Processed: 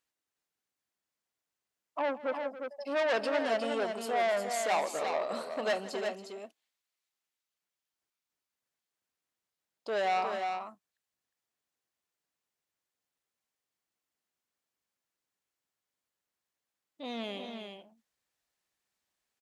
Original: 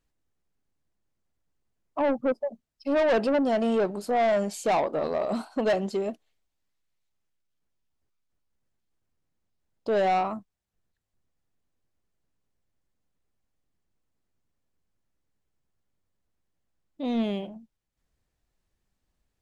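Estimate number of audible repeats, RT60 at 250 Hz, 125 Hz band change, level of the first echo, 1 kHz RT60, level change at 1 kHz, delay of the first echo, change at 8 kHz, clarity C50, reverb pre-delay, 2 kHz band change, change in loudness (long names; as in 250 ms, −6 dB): 3, no reverb audible, below −10 dB, −18.5 dB, no reverb audible, −4.0 dB, 162 ms, +1.0 dB, no reverb audible, no reverb audible, −0.5 dB, −6.0 dB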